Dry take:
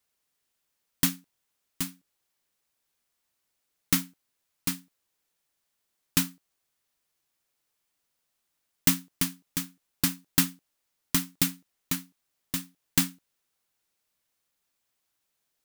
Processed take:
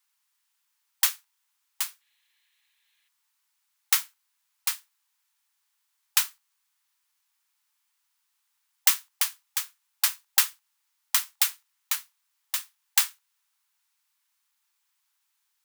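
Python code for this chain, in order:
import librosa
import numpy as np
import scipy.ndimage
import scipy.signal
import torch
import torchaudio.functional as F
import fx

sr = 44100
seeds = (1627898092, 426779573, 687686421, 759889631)

y = fx.spec_box(x, sr, start_s=2.01, length_s=1.07, low_hz=1600.0, high_hz=4300.0, gain_db=11)
y = fx.brickwall_highpass(y, sr, low_hz=810.0)
y = F.gain(torch.from_numpy(y), 3.5).numpy()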